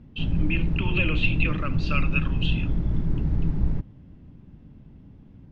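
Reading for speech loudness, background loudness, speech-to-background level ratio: −29.0 LKFS, −27.5 LKFS, −1.5 dB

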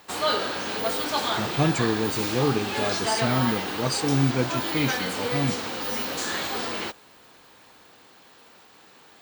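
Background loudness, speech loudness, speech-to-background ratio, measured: −27.0 LKFS, −27.0 LKFS, 0.0 dB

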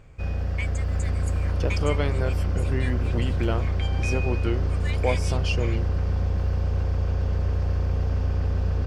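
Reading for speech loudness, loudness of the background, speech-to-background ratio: −31.0 LKFS, −26.0 LKFS, −5.0 dB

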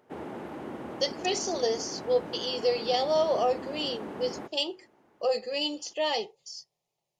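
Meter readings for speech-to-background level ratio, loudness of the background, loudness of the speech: 10.5 dB, −40.0 LKFS, −29.5 LKFS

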